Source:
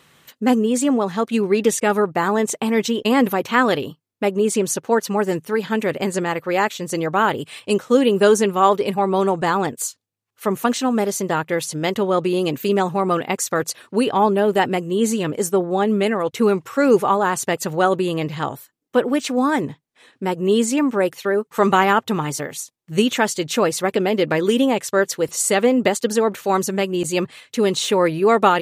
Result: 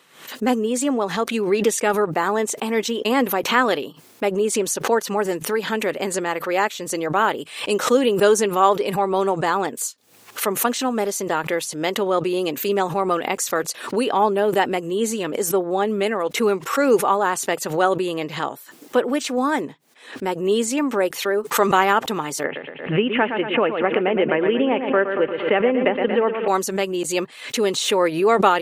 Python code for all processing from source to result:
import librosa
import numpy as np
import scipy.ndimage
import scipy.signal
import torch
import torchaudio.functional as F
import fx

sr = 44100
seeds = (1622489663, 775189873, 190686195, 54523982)

y = fx.chain(x, sr, fx.steep_lowpass(hz=3000.0, slope=72),
    fx.echo_feedback(ms=116, feedback_pct=47, wet_db=-9.0),
    fx.band_squash(depth_pct=70), at=(22.44, 26.48))
y = scipy.signal.sosfilt(scipy.signal.butter(2, 270.0, 'highpass', fs=sr, output='sos'), y)
y = fx.pre_swell(y, sr, db_per_s=100.0)
y = y * 10.0 ** (-1.0 / 20.0)